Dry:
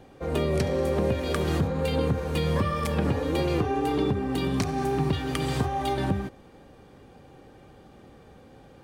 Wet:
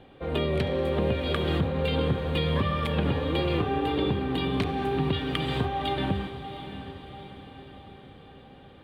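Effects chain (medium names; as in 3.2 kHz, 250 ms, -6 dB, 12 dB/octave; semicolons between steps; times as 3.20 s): resonant high shelf 4.5 kHz -9.5 dB, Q 3; echo that smears into a reverb 698 ms, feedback 50%, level -11 dB; trim -1.5 dB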